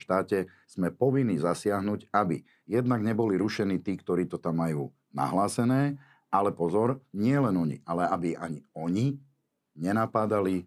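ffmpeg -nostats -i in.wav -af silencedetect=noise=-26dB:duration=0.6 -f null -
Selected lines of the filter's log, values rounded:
silence_start: 9.11
silence_end: 9.83 | silence_duration: 0.71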